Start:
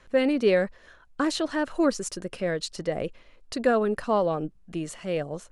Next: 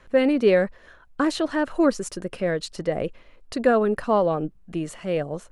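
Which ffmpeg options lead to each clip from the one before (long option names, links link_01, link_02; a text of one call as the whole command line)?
ffmpeg -i in.wav -af "equalizer=frequency=6000:width=0.6:gain=-5.5,volume=3.5dB" out.wav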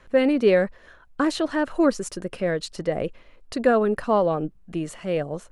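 ffmpeg -i in.wav -af anull out.wav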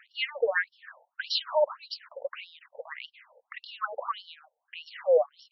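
ffmpeg -i in.wav -af "afftfilt=real='re*between(b*sr/1024,630*pow(4100/630,0.5+0.5*sin(2*PI*1.7*pts/sr))/1.41,630*pow(4100/630,0.5+0.5*sin(2*PI*1.7*pts/sr))*1.41)':imag='im*between(b*sr/1024,630*pow(4100/630,0.5+0.5*sin(2*PI*1.7*pts/sr))/1.41,630*pow(4100/630,0.5+0.5*sin(2*PI*1.7*pts/sr))*1.41)':win_size=1024:overlap=0.75,volume=5.5dB" out.wav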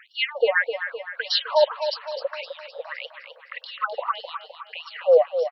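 ffmpeg -i in.wav -af "aecho=1:1:257|514|771|1028|1285|1542:0.355|0.181|0.0923|0.0471|0.024|0.0122,volume=6dB" out.wav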